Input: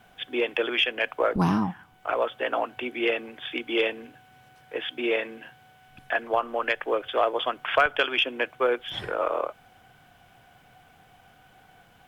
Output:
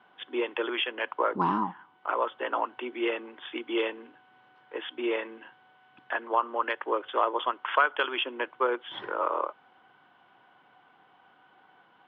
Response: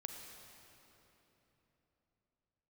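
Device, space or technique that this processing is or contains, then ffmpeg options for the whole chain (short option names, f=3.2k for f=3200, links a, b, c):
phone earpiece: -filter_complex "[0:a]asettb=1/sr,asplit=3[a][b][c];[a]atrim=end=7.514[d];[b]atrim=start=7.51:end=8.04,asetpts=PTS-STARTPTS,afade=t=in:d=0.004:c=qsin,afade=t=out:st=0.526:d=0.004:c=qsin,equalizer=f=160:w=1.2:g=-8[e];[c]atrim=start=8.036[f];[d][e]acrossfade=d=0.004:c1=hsin:c2=qsin[g];[g][f]acrossfade=d=0.004:c1=qsin:c2=hsin,highpass=340,equalizer=f=340:t=q:w=4:g=3,equalizer=f=480:t=q:w=4:g=-4,equalizer=f=690:t=q:w=4:g=-9,equalizer=f=980:t=q:w=4:g=7,equalizer=f=1.7k:t=q:w=4:g=-4,equalizer=f=2.4k:t=q:w=4:g=-9,lowpass=f=3k:w=0.5412,lowpass=f=3k:w=1.3066"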